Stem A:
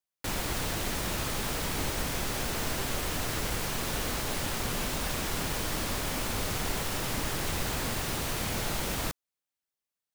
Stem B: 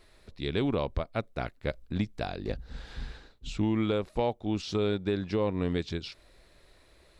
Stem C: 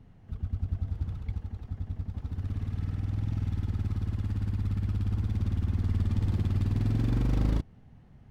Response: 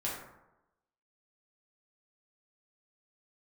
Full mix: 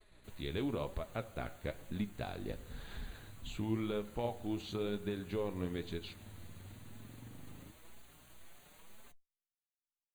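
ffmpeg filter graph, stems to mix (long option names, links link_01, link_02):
-filter_complex "[0:a]aeval=exprs='abs(val(0))':channel_layout=same,asplit=2[link_01][link_02];[link_02]adelay=5.4,afreqshift=2[link_03];[link_01][link_03]amix=inputs=2:normalize=1,volume=-18dB[link_04];[1:a]agate=range=-33dB:threshold=-53dB:ratio=3:detection=peak,acompressor=threshold=-47dB:ratio=1.5,volume=2dB,asplit=2[link_05][link_06];[link_06]volume=-16dB[link_07];[2:a]highpass=110,aeval=exprs='val(0)+0.00794*(sin(2*PI*60*n/s)+sin(2*PI*2*60*n/s)/2+sin(2*PI*3*60*n/s)/3+sin(2*PI*4*60*n/s)/4+sin(2*PI*5*60*n/s)/5)':channel_layout=same,adelay=100,volume=-19dB[link_08];[3:a]atrim=start_sample=2205[link_09];[link_07][link_09]afir=irnorm=-1:irlink=0[link_10];[link_04][link_05][link_08][link_10]amix=inputs=4:normalize=0,flanger=delay=4.6:depth=7.8:regen=61:speed=1:shape=sinusoidal,asuperstop=centerf=5300:order=4:qfactor=3"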